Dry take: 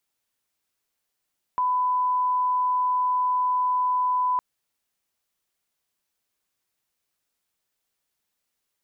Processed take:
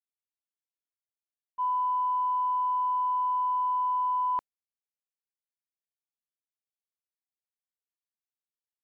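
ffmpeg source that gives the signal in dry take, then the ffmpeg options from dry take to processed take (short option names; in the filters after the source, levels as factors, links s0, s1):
-f lavfi -i "sine=f=1000:d=2.81:r=44100,volume=-1.94dB"
-af "acontrast=44,equalizer=f=1100:t=o:w=0.82:g=-4,agate=range=0.0224:threshold=0.158:ratio=3:detection=peak"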